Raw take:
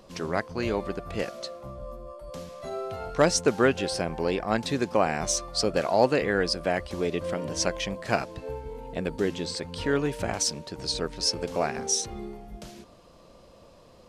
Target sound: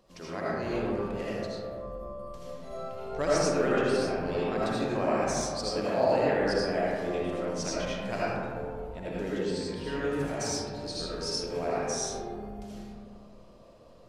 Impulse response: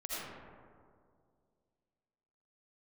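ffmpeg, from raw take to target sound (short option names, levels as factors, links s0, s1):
-filter_complex "[1:a]atrim=start_sample=2205[s0];[0:a][s0]afir=irnorm=-1:irlink=0,volume=0.501"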